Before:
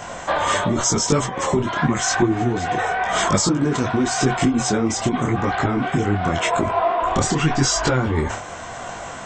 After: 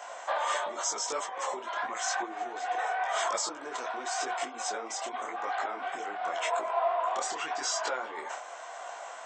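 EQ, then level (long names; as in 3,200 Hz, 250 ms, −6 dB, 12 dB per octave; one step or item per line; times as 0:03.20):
four-pole ladder high-pass 510 Hz, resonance 30%
−4.5 dB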